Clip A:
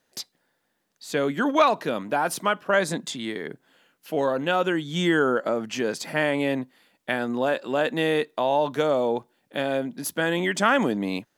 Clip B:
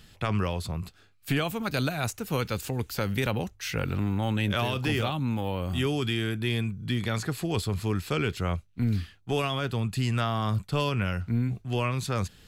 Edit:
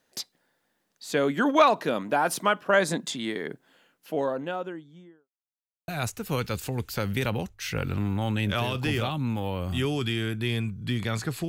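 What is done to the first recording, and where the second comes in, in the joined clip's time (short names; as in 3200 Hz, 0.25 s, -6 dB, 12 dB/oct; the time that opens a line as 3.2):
clip A
3.59–5.29 studio fade out
5.29–5.88 mute
5.88 switch to clip B from 1.89 s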